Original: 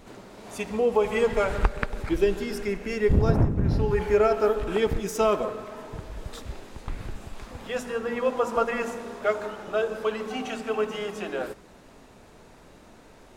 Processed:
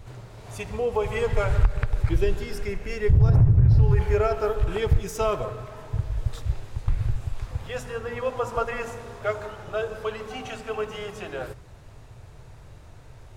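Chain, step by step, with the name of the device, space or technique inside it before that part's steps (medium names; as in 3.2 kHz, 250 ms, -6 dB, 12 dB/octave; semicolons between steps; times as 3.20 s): car stereo with a boomy subwoofer (resonant low shelf 160 Hz +10.5 dB, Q 3; peak limiter -8 dBFS, peak gain reduction 11.5 dB); trim -1.5 dB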